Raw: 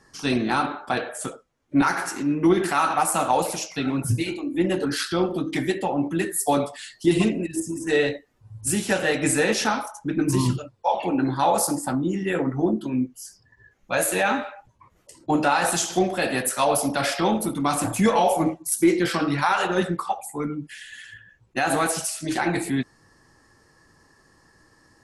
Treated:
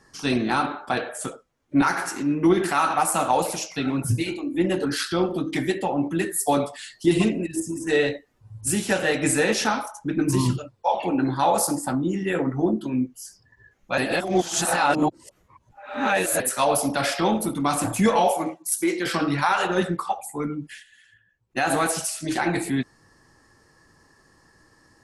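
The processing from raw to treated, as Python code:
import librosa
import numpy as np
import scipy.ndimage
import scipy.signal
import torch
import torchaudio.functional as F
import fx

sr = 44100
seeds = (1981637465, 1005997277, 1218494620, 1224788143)

y = fx.highpass(x, sr, hz=550.0, slope=6, at=(18.31, 19.06))
y = fx.edit(y, sr, fx.reverse_span(start_s=13.98, length_s=2.42),
    fx.fade_down_up(start_s=20.72, length_s=0.89, db=-13.5, fade_s=0.12, curve='qsin'), tone=tone)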